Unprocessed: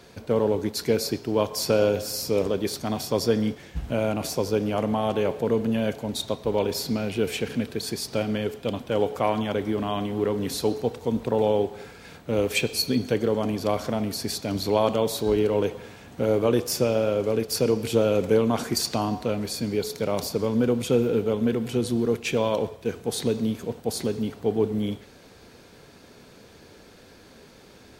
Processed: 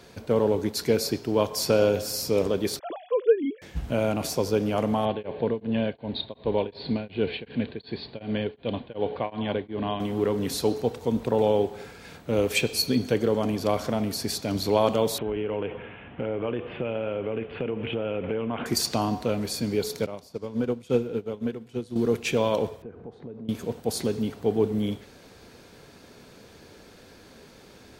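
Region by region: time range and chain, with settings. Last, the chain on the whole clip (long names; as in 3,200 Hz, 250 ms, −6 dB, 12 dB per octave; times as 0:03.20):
0:02.79–0:03.62: three sine waves on the formant tracks + low-pass filter 2,500 Hz
0:05.05–0:10.00: Butterworth low-pass 4,400 Hz 96 dB per octave + notch filter 1,300 Hz, Q 5.9 + tremolo along a rectified sine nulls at 2.7 Hz
0:15.18–0:18.66: Butterworth low-pass 3,100 Hz 72 dB per octave + downward compressor 4 to 1, threshold −26 dBFS + high-shelf EQ 2,100 Hz +8 dB
0:20.06–0:21.96: high-shelf EQ 12,000 Hz −10 dB + expander for the loud parts 2.5 to 1, over −30 dBFS
0:22.82–0:23.49: downward compressor 4 to 1, threshold −38 dBFS + low-pass filter 1,200 Hz + one half of a high-frequency compander decoder only
whole clip: no processing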